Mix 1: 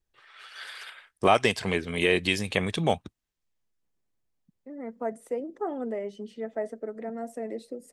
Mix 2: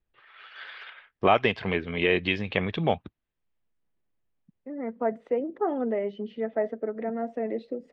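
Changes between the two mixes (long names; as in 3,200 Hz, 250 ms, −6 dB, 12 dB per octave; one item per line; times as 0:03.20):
second voice +4.5 dB
master: add low-pass filter 3,300 Hz 24 dB per octave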